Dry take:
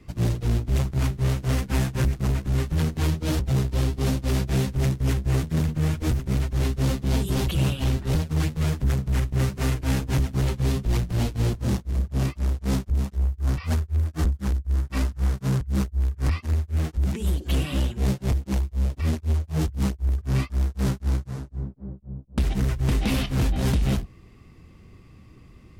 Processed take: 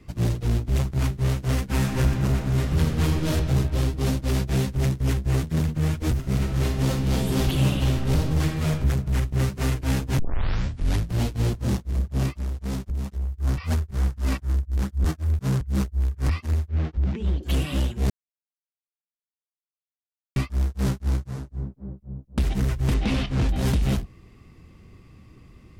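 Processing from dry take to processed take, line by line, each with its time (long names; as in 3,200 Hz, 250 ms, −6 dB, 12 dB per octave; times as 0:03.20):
0:01.64–0:03.31: thrown reverb, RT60 2.3 s, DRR 1.5 dB
0:06.17–0:08.69: thrown reverb, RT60 1.1 s, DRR 2 dB
0:10.19: tape start 0.92 s
0:12.29–0:13.36: downward compressor, threshold −24 dBFS
0:13.91–0:15.39: reverse
0:16.68–0:17.43: high-frequency loss of the air 200 metres
0:18.10–0:20.36: silence
0:22.94–0:23.49: high-frequency loss of the air 69 metres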